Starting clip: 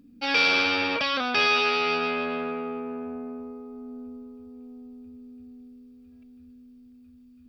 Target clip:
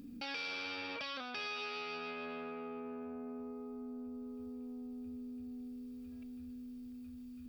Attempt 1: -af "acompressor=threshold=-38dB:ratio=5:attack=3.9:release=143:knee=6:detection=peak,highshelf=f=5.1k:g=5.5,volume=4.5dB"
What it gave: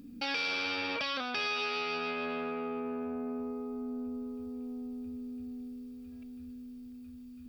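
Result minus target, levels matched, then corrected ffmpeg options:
compressor: peak gain reduction -8 dB
-af "acompressor=threshold=-48dB:ratio=5:attack=3.9:release=143:knee=6:detection=peak,highshelf=f=5.1k:g=5.5,volume=4.5dB"

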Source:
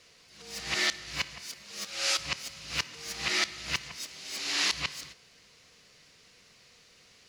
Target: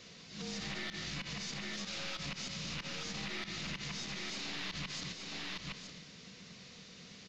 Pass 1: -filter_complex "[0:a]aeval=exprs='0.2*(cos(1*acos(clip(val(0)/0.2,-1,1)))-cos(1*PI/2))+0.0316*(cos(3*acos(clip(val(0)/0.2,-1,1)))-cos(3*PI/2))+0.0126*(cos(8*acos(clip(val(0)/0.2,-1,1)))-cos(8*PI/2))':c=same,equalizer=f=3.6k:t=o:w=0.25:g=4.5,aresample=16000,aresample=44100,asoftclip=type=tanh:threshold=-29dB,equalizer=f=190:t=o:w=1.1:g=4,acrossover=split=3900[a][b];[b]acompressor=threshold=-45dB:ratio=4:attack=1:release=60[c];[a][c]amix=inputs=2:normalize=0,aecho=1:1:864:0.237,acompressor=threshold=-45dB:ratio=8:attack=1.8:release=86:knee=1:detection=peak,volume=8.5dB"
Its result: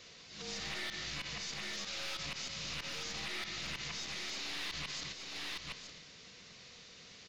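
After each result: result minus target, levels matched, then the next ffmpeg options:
250 Hz band -7.5 dB; soft clip: distortion +11 dB
-filter_complex "[0:a]aeval=exprs='0.2*(cos(1*acos(clip(val(0)/0.2,-1,1)))-cos(1*PI/2))+0.0316*(cos(3*acos(clip(val(0)/0.2,-1,1)))-cos(3*PI/2))+0.0126*(cos(8*acos(clip(val(0)/0.2,-1,1)))-cos(8*PI/2))':c=same,equalizer=f=3.6k:t=o:w=0.25:g=4.5,aresample=16000,aresample=44100,asoftclip=type=tanh:threshold=-29dB,equalizer=f=190:t=o:w=1.1:g=14.5,acrossover=split=3900[a][b];[b]acompressor=threshold=-45dB:ratio=4:attack=1:release=60[c];[a][c]amix=inputs=2:normalize=0,aecho=1:1:864:0.237,acompressor=threshold=-45dB:ratio=8:attack=1.8:release=86:knee=1:detection=peak,volume=8.5dB"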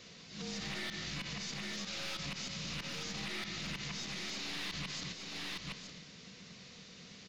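soft clip: distortion +11 dB
-filter_complex "[0:a]aeval=exprs='0.2*(cos(1*acos(clip(val(0)/0.2,-1,1)))-cos(1*PI/2))+0.0316*(cos(3*acos(clip(val(0)/0.2,-1,1)))-cos(3*PI/2))+0.0126*(cos(8*acos(clip(val(0)/0.2,-1,1)))-cos(8*PI/2))':c=same,equalizer=f=3.6k:t=o:w=0.25:g=4.5,aresample=16000,aresample=44100,asoftclip=type=tanh:threshold=-19dB,equalizer=f=190:t=o:w=1.1:g=14.5,acrossover=split=3900[a][b];[b]acompressor=threshold=-45dB:ratio=4:attack=1:release=60[c];[a][c]amix=inputs=2:normalize=0,aecho=1:1:864:0.237,acompressor=threshold=-45dB:ratio=8:attack=1.8:release=86:knee=1:detection=peak,volume=8.5dB"

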